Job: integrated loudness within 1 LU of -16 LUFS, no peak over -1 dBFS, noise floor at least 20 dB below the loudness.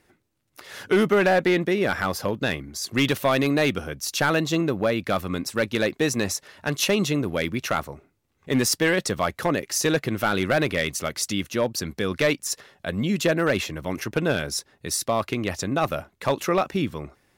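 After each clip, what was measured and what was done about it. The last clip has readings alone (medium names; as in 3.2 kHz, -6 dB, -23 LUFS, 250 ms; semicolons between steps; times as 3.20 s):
clipped samples 0.5%; clipping level -13.5 dBFS; loudness -24.5 LUFS; peak level -13.5 dBFS; loudness target -16.0 LUFS
-> clip repair -13.5 dBFS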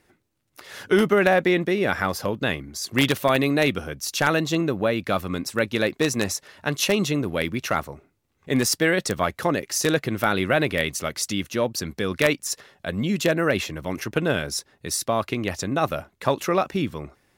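clipped samples 0.0%; loudness -23.5 LUFS; peak level -4.5 dBFS; loudness target -16.0 LUFS
-> trim +7.5 dB; peak limiter -1 dBFS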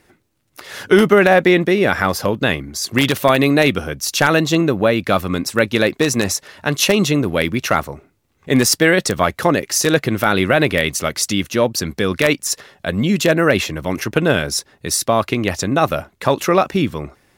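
loudness -16.5 LUFS; peak level -1.0 dBFS; noise floor -60 dBFS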